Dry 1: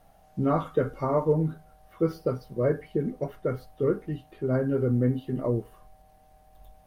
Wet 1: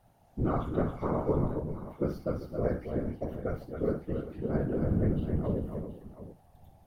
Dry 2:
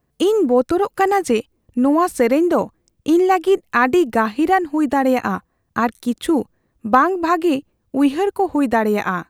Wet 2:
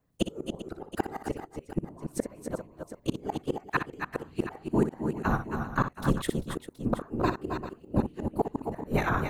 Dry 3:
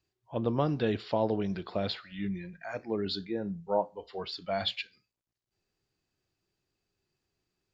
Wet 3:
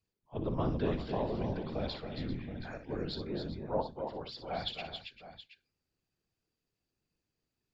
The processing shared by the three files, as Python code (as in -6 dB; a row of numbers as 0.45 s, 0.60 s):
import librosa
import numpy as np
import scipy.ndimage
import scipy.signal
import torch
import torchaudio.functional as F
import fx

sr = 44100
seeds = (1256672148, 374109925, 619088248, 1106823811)

p1 = fx.octave_divider(x, sr, octaves=1, level_db=1.0)
p2 = fx.whisperise(p1, sr, seeds[0])
p3 = fx.gate_flip(p2, sr, shuts_db=-6.0, range_db=-29)
p4 = p3 + fx.echo_multitap(p3, sr, ms=(60, 265, 278, 394, 724), db=(-10.0, -13.5, -7.5, -14.0, -14.0), dry=0)
y = p4 * librosa.db_to_amplitude(-7.0)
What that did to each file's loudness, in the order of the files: -4.5 LU, -14.5 LU, -4.5 LU